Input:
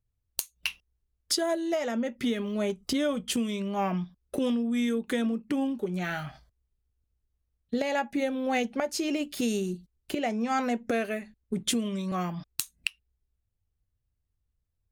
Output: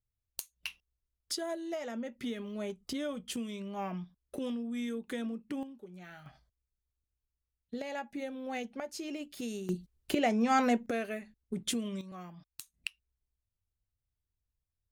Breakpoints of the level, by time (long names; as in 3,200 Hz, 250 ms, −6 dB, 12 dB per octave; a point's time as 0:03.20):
−9 dB
from 0:05.63 −18 dB
from 0:06.26 −10.5 dB
from 0:09.69 +1 dB
from 0:10.86 −6 dB
from 0:12.01 −15.5 dB
from 0:12.74 −8 dB